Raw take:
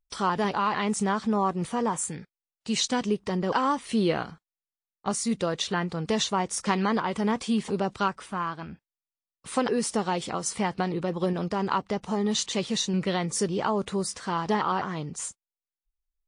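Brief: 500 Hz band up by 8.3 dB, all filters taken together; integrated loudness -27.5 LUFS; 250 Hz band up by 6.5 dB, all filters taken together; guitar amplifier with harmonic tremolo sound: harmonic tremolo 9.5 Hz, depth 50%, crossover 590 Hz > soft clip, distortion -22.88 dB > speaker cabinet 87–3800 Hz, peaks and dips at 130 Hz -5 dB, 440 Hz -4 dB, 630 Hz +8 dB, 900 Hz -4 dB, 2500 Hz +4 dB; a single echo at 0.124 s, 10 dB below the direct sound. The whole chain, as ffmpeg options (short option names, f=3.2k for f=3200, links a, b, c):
-filter_complex "[0:a]equalizer=f=250:t=o:g=7.5,equalizer=f=500:t=o:g=7.5,aecho=1:1:124:0.316,acrossover=split=590[a][b];[a]aeval=exprs='val(0)*(1-0.5/2+0.5/2*cos(2*PI*9.5*n/s))':c=same[c];[b]aeval=exprs='val(0)*(1-0.5/2-0.5/2*cos(2*PI*9.5*n/s))':c=same[d];[c][d]amix=inputs=2:normalize=0,asoftclip=threshold=-10.5dB,highpass=87,equalizer=f=130:t=q:w=4:g=-5,equalizer=f=440:t=q:w=4:g=-4,equalizer=f=630:t=q:w=4:g=8,equalizer=f=900:t=q:w=4:g=-4,equalizer=f=2.5k:t=q:w=4:g=4,lowpass=f=3.8k:w=0.5412,lowpass=f=3.8k:w=1.3066,volume=-2dB"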